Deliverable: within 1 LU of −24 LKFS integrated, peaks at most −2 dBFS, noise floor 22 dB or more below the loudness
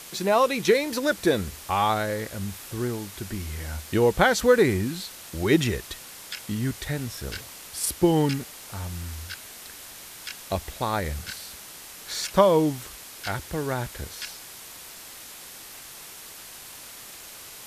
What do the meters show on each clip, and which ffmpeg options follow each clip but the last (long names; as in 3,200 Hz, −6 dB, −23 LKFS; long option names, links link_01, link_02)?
background noise floor −43 dBFS; target noise floor −48 dBFS; integrated loudness −26.0 LKFS; sample peak −5.0 dBFS; target loudness −24.0 LKFS
→ -af "afftdn=noise_reduction=6:noise_floor=-43"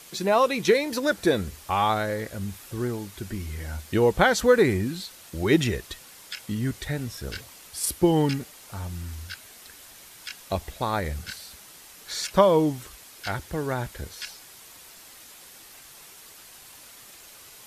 background noise floor −48 dBFS; integrated loudness −25.5 LKFS; sample peak −5.0 dBFS; target loudness −24.0 LKFS
→ -af "volume=1.5dB"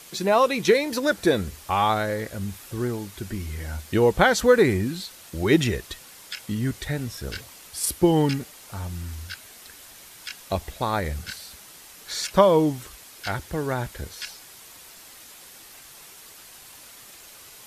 integrated loudness −24.0 LKFS; sample peak −3.5 dBFS; background noise floor −47 dBFS